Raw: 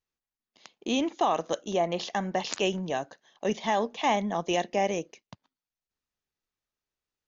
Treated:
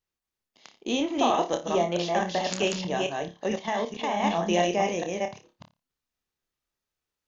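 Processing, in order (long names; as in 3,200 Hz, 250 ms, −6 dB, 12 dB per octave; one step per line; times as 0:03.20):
delay that plays each chunk backwards 219 ms, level −2 dB
flutter between parallel walls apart 4.9 metres, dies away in 0.24 s
0:03.48–0:04.24: output level in coarse steps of 9 dB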